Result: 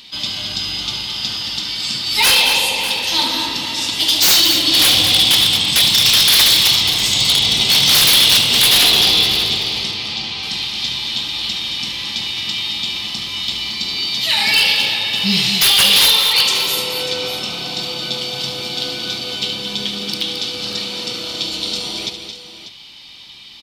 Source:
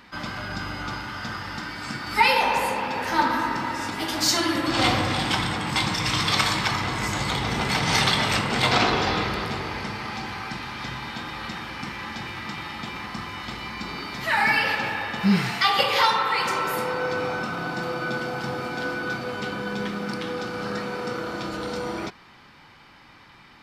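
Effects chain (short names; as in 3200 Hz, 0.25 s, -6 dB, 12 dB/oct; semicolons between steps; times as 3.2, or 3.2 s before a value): resonant high shelf 2300 Hz +14 dB, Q 3; wavefolder -5.5 dBFS; 9.91–10.43 air absorption 82 m; on a send: tapped delay 72/221/593 ms -10.5/-8.5/-13.5 dB; on the sum: gain -1 dB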